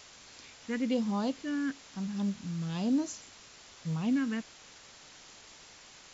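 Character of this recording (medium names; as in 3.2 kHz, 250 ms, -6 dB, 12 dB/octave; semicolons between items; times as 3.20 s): phasing stages 4, 1.1 Hz, lowest notch 720–2300 Hz; a quantiser's noise floor 8-bit, dither triangular; MP2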